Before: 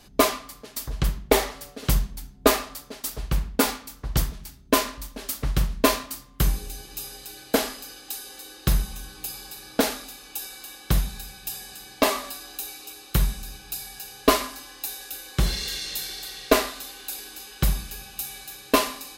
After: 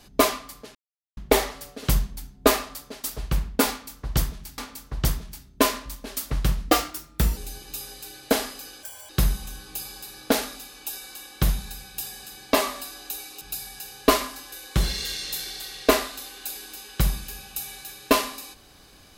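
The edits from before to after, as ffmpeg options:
-filter_complex "[0:a]asplit=10[a][b][c][d][e][f][g][h][i][j];[a]atrim=end=0.75,asetpts=PTS-STARTPTS,afade=t=out:st=0.746:d=0.004:c=hsin[k];[b]atrim=start=0.75:end=1.17,asetpts=PTS-STARTPTS,volume=0[l];[c]atrim=start=1.17:end=4.582,asetpts=PTS-STARTPTS,afade=t=in:d=0.004:c=hsin[m];[d]atrim=start=3.698:end=5.794[n];[e]atrim=start=5.79:end=6.6,asetpts=PTS-STARTPTS,asetrate=51156,aresample=44100[o];[f]atrim=start=6.596:end=8.064[p];[g]atrim=start=8.06:end=8.58,asetpts=PTS-STARTPTS,asetrate=86877,aresample=44100[q];[h]atrim=start=8.576:end=12.902[r];[i]atrim=start=13.608:end=14.722[s];[j]atrim=start=15.148[t];[k][l][m]concat=n=3:v=0:a=1[u];[u][n]acrossfade=d=0.004:c1=hsin:c2=hsin[v];[v][o]acrossfade=d=0.004:c1=hsin:c2=hsin[w];[w][p]acrossfade=d=0.004:c1=hsin:c2=hsin[x];[x][q]acrossfade=d=0.004:c1=hsin:c2=hsin[y];[y][r]acrossfade=d=0.004:c1=hsin:c2=hsin[z];[z][s]acrossfade=d=0.004:c1=hsin:c2=hsin[aa];[aa][t]acrossfade=d=0.004:c1=hsin:c2=hsin"

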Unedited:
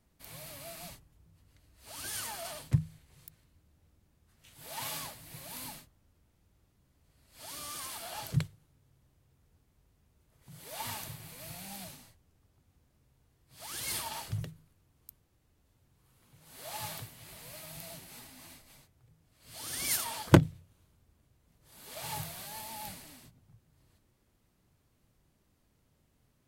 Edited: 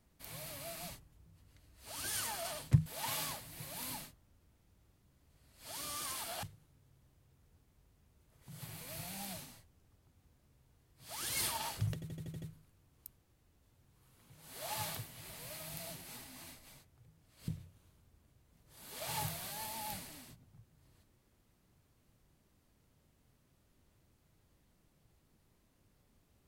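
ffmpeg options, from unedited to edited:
-filter_complex "[0:a]asplit=11[a][b][c][d][e][f][g][h][i][j][k];[a]atrim=end=2.862[l];[b]atrim=start=4.598:end=8.172[m];[c]atrim=start=8.428:end=10.622[n];[d]atrim=start=11.128:end=14.532[o];[e]atrim=start=14.448:end=14.532[p];[f]atrim=start=14.448:end=14.532[q];[g]atrim=start=14.448:end=14.532[r];[h]atrim=start=14.448:end=14.532[s];[i]atrim=start=14.448:end=14.532[t];[j]atrim=start=14.448:end=19.512[u];[k]atrim=start=20.428[v];[l][m]acrossfade=d=0.004:c1=hsin:c2=hsin[w];[w][n]acrossfade=d=0.004:c1=hsin:c2=hsin[x];[x][o]acrossfade=d=0.004:c1=hsin:c2=hsin[y];[y][p]acrossfade=d=0.004:c1=hsin:c2=hsin[z];[z][q]acrossfade=d=0.004:c1=hsin:c2=hsin[aa];[aa][r]acrossfade=d=0.004:c1=hsin:c2=hsin[ab];[ab][s]acrossfade=d=0.004:c1=hsin:c2=hsin[ac];[ac][t]acrossfade=d=0.004:c1=hsin:c2=hsin[ad];[ad][u]acrossfade=d=0.004:c1=hsin:c2=hsin[ae];[ae][v]acrossfade=d=0.004:c1=hsin:c2=hsin"

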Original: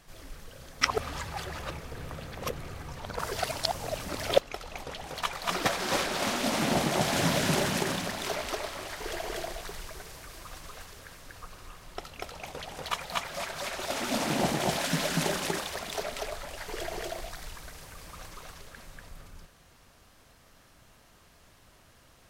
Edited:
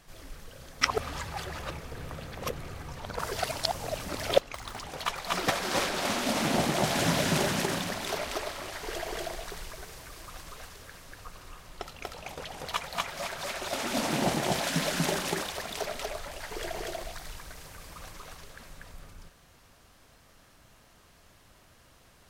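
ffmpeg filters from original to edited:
-filter_complex "[0:a]asplit=3[a][b][c];[a]atrim=end=4.544[d];[b]atrim=start=4.54:end=5.01,asetpts=PTS-STARTPTS,asetrate=69678,aresample=44100,atrim=end_sample=13118,asetpts=PTS-STARTPTS[e];[c]atrim=start=5.006[f];[d][e]acrossfade=d=0.004:c1=hsin:c2=hsin[g];[g][f]acrossfade=d=0.004:c1=hsin:c2=hsin"

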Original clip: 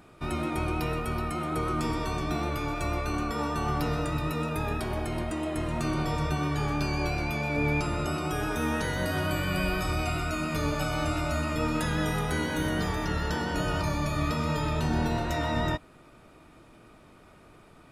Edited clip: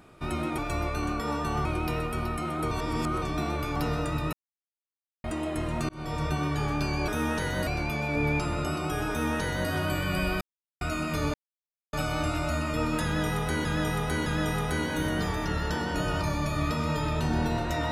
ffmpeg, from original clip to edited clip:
-filter_complex "[0:a]asplit=16[a][b][c][d][e][f][g][h][i][j][k][l][m][n][o][p];[a]atrim=end=0.582[q];[b]atrim=start=2.688:end=3.762[r];[c]atrim=start=0.578:end=1.642[s];[d]atrim=start=1.638:end=2.152,asetpts=PTS-STARTPTS,areverse[t];[e]atrim=start=2.148:end=2.692[u];[f]atrim=start=3.758:end=4.33,asetpts=PTS-STARTPTS,afade=t=out:st=0.568:d=0.004:c=hsin[v];[g]atrim=start=4.33:end=5.24,asetpts=PTS-STARTPTS,volume=0[w];[h]atrim=start=5.24:end=5.89,asetpts=PTS-STARTPTS,afade=t=in:d=0.004:c=hsin,afade=t=out:st=0.646:d=0.004:c=hsin[x];[i]atrim=start=5.89:end=7.082,asetpts=PTS-STARTPTS,afade=t=in:d=0.47:c=qsin[y];[j]atrim=start=8.508:end=9.102[z];[k]atrim=start=7.078:end=9.82,asetpts=PTS-STARTPTS,afade=t=out:st=2.738:d=0.004:c=hsin[aa];[l]atrim=start=9.82:end=10.22,asetpts=PTS-STARTPTS,volume=0[ab];[m]atrim=start=10.22:end=10.75,asetpts=PTS-STARTPTS,afade=t=in:d=0.004:c=hsin,afade=t=out:st=0.526:d=0.004:c=hsin,apad=pad_dur=0.59[ac];[n]atrim=start=10.75:end=12.472,asetpts=PTS-STARTPTS,afade=t=in:d=0.004:c=hsin[ad];[o]atrim=start=11.858:end=12.472[ae];[p]atrim=start=11.858[af];[q][r]acrossfade=d=0.004:c1=hsin:c2=hsin[ag];[ag][s]acrossfade=d=0.004:c1=hsin:c2=hsin[ah];[ah][t]acrossfade=d=0.004:c1=hsin:c2=hsin[ai];[ai][u]acrossfade=d=0.004:c1=hsin:c2=hsin[aj];[v][w][x][y]concat=n=4:v=0:a=1[ak];[aj][ak]acrossfade=d=0.004:c1=hsin:c2=hsin[al];[al][z]acrossfade=d=0.004:c1=hsin:c2=hsin[am];[aa][ab][ac][ad]concat=n=4:v=0:a=1[an];[am][an]acrossfade=d=0.004:c1=hsin:c2=hsin[ao];[ao][ae]acrossfade=d=0.004:c1=hsin:c2=hsin[ap];[ap][af]acrossfade=d=0.004:c1=hsin:c2=hsin"

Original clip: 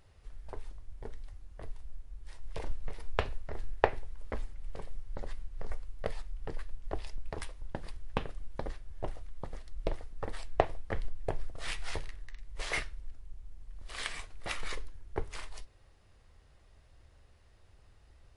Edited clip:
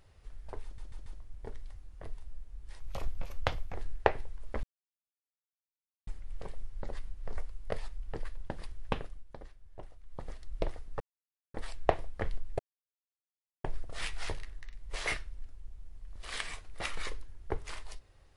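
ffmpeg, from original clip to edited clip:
-filter_complex "[0:a]asplit=12[a][b][c][d][e][f][g][h][i][j][k][l];[a]atrim=end=0.782[m];[b]atrim=start=0.638:end=0.782[n];[c]atrim=start=0.638:end=0.782[o];[d]atrim=start=0.638:end=2.384[p];[e]atrim=start=2.38:end=3.52,asetpts=PTS-STARTPTS,asetrate=53361,aresample=44100[q];[f]atrim=start=3.516:end=4.41,asetpts=PTS-STARTPTS,afade=t=out:st=0.89:d=0.004:c=hsin,apad=pad_dur=1.44[r];[g]atrim=start=4.41:end=6.712,asetpts=PTS-STARTPTS,afade=t=in:d=0.004:c=hsin[s];[h]atrim=start=7.618:end=8.5,asetpts=PTS-STARTPTS,afade=t=out:st=0.632:d=0.25:silence=0.298538[t];[i]atrim=start=8.5:end=9.26,asetpts=PTS-STARTPTS,volume=-10.5dB[u];[j]atrim=start=9.26:end=10.25,asetpts=PTS-STARTPTS,afade=t=in:d=0.25:silence=0.298538,afade=t=out:st=0.986:d=0.004:c=hsin,apad=pad_dur=0.54[v];[k]atrim=start=10.25:end=11.3,asetpts=PTS-STARTPTS,afade=t=in:d=0.004:c=hsin,afade=t=out:st=1.046:d=0.004:c=hsin,apad=pad_dur=1.05[w];[l]atrim=start=11.3,asetpts=PTS-STARTPTS,afade=t=in:d=0.004:c=hsin[x];[m][n]acrossfade=d=0.004:c1=hsin:c2=hsin[y];[y][o]acrossfade=d=0.004:c1=hsin:c2=hsin[z];[z][p]acrossfade=d=0.004:c1=hsin:c2=hsin[aa];[aa][q]acrossfade=d=0.004:c1=hsin:c2=hsin[ab];[r][s]concat=n=2:v=0:a=1[ac];[ab][ac]acrossfade=d=0.004:c1=hsin:c2=hsin[ad];[t][u][v][w][x]concat=n=5:v=0:a=1[ae];[ad][ae]acrossfade=d=0.004:c1=hsin:c2=hsin"

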